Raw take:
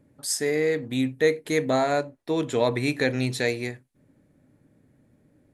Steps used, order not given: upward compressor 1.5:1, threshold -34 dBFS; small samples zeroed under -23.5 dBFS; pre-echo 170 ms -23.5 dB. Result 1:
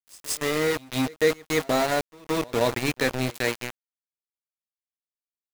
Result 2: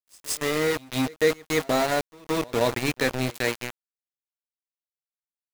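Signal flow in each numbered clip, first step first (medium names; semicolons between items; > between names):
small samples zeroed > pre-echo > upward compressor; upward compressor > small samples zeroed > pre-echo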